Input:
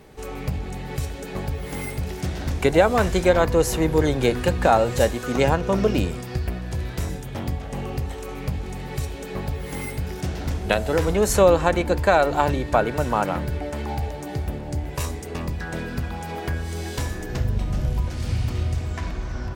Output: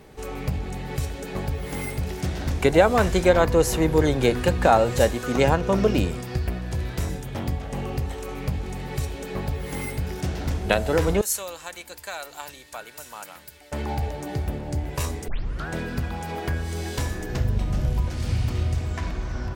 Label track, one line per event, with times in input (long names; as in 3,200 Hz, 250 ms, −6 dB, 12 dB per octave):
11.210000	13.720000	first-order pre-emphasis coefficient 0.97
15.280000	15.280000	tape start 0.40 s